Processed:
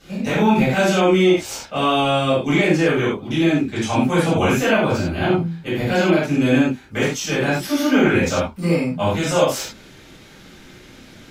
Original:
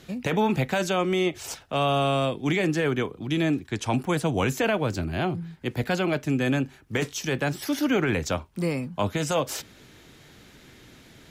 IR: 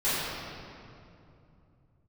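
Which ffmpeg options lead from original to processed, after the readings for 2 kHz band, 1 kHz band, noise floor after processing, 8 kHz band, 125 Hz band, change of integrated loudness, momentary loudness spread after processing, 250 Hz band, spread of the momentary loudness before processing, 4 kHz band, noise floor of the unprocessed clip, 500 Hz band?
+7.5 dB, +7.0 dB, -44 dBFS, +6.0 dB, +5.5 dB, +7.5 dB, 6 LU, +8.5 dB, 6 LU, +7.0 dB, -52 dBFS, +8.0 dB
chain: -filter_complex "[1:a]atrim=start_sample=2205,afade=t=out:st=0.21:d=0.01,atrim=end_sample=9702,asetrate=61740,aresample=44100[a];[0:a][a]afir=irnorm=-1:irlink=0,volume=-1dB"

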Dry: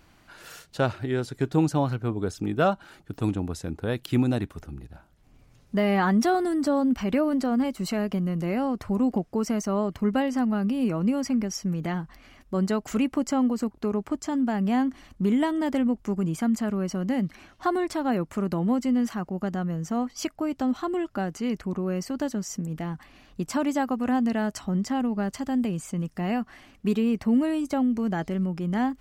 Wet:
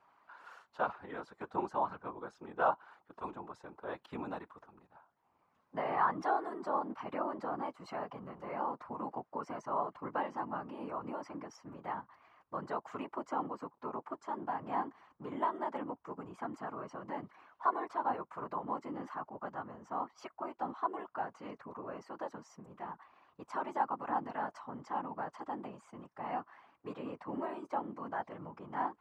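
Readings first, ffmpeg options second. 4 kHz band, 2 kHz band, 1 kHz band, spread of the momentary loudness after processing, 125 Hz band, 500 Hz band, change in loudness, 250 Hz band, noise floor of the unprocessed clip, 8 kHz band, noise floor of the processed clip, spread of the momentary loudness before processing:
-20.0 dB, -10.0 dB, -3.5 dB, 13 LU, -23.5 dB, -12.0 dB, -13.0 dB, -21.0 dB, -57 dBFS, under -25 dB, -75 dBFS, 8 LU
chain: -af "afftfilt=real='hypot(re,im)*cos(2*PI*random(0))':imag='hypot(re,im)*sin(2*PI*random(1))':win_size=512:overlap=0.75,bandpass=f=1k:t=q:w=3.1:csg=0,volume=6.5dB"

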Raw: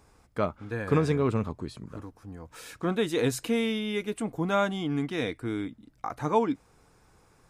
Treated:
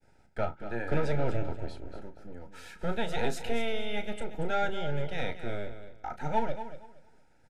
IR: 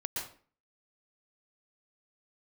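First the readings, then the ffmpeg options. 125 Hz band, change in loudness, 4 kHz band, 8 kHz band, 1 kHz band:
-4.5 dB, -5.0 dB, -4.0 dB, -8.5 dB, -2.0 dB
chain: -filter_complex "[0:a]acrossover=split=560[a][b];[a]aeval=exprs='abs(val(0))':c=same[c];[c][b]amix=inputs=2:normalize=0,lowpass=f=2.7k:p=1,agate=range=-33dB:threshold=-58dB:ratio=3:detection=peak,asoftclip=type=tanh:threshold=-15dB,asuperstop=centerf=1100:order=20:qfactor=3.8,asplit=2[d][e];[e]adelay=34,volume=-11dB[f];[d][f]amix=inputs=2:normalize=0,aecho=1:1:234|468|702:0.266|0.0585|0.0129"

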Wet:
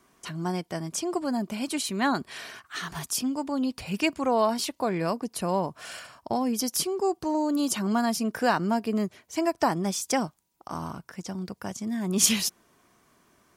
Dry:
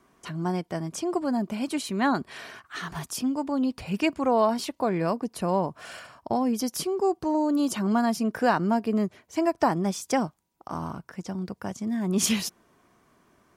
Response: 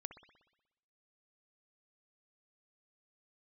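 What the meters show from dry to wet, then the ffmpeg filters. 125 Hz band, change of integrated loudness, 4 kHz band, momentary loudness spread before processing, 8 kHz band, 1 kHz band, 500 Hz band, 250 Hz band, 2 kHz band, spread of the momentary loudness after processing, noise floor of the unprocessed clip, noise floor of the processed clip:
-2.0 dB, -0.5 dB, +3.5 dB, 11 LU, +5.0 dB, -1.0 dB, -1.5 dB, -2.0 dB, +0.5 dB, 12 LU, -68 dBFS, -67 dBFS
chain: -af "highshelf=f=2.6k:g=8,volume=-2dB"

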